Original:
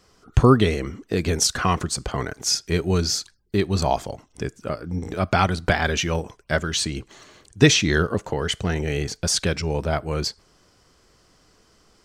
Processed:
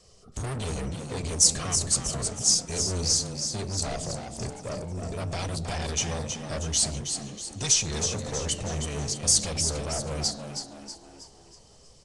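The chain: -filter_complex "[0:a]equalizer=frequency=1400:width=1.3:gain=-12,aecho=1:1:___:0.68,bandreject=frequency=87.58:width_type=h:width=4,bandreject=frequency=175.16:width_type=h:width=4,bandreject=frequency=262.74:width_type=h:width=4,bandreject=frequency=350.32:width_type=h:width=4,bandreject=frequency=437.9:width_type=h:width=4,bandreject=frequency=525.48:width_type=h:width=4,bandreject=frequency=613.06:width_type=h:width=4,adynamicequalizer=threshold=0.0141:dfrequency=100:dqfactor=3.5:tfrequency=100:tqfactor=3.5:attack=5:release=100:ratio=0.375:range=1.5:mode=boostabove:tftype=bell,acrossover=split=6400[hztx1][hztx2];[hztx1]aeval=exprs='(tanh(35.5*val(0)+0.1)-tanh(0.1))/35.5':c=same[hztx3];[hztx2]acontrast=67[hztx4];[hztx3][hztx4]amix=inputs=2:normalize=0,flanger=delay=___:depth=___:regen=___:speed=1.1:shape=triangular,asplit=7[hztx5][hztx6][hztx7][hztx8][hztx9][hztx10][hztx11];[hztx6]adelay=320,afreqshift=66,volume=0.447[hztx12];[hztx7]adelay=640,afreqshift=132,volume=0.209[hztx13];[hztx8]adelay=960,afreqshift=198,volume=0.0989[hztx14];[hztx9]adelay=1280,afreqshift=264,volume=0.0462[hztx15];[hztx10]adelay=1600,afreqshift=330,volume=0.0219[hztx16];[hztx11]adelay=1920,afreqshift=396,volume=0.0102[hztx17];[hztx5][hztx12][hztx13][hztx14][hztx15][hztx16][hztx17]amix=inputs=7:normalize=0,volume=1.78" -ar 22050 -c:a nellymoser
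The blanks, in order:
1.7, 6.9, 8.4, 86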